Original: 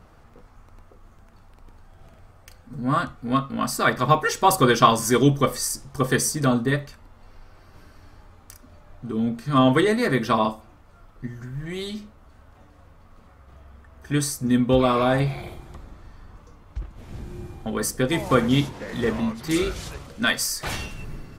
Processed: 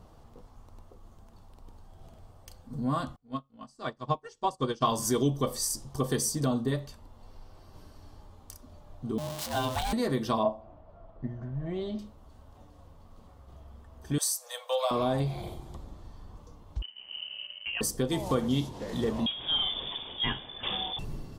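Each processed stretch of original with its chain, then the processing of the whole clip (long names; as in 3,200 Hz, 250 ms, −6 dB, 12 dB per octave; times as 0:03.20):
0:03.16–0:04.85: low-pass filter 8,400 Hz 24 dB per octave + notch filter 3,700 Hz, Q 24 + expander for the loud parts 2.5 to 1, over −32 dBFS
0:09.18–0:09.93: converter with a step at zero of −21.5 dBFS + high-pass filter 770 Hz 6 dB per octave + ring modulation 380 Hz
0:10.43–0:11.99: low-pass filter 2,000 Hz + parametric band 640 Hz +13.5 dB 0.28 octaves
0:14.18–0:14.91: Butterworth high-pass 510 Hz 96 dB per octave + high-shelf EQ 4,700 Hz +7 dB
0:16.82–0:17.81: mu-law and A-law mismatch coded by A + voice inversion scrambler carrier 3,000 Hz
0:19.26–0:20.99: spike at every zero crossing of −19.5 dBFS + voice inversion scrambler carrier 3,500 Hz
whole clip: flat-topped bell 1,800 Hz −9 dB 1.2 octaves; downward compressor 2 to 1, threshold −26 dBFS; level −2 dB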